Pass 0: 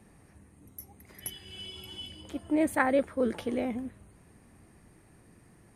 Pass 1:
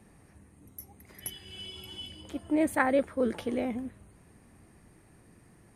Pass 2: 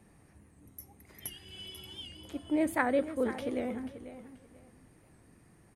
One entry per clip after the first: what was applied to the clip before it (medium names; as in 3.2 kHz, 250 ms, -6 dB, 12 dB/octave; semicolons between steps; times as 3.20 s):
no audible change
feedback delay 487 ms, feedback 24%, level -13 dB; on a send at -19.5 dB: reverberation RT60 0.70 s, pre-delay 3 ms; on the sum: warped record 78 rpm, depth 100 cents; trim -3 dB